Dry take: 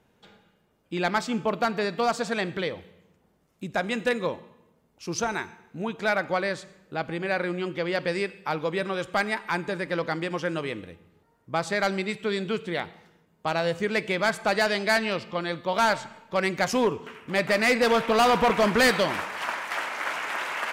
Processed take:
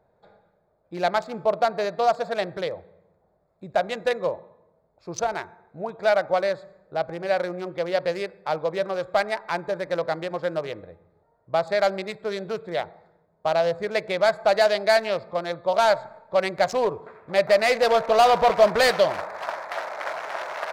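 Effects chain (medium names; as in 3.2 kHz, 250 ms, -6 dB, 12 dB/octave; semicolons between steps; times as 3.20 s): local Wiener filter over 15 samples; fifteen-band graphic EQ 250 Hz -10 dB, 630 Hz +11 dB, 4 kHz +5 dB; trim -1.5 dB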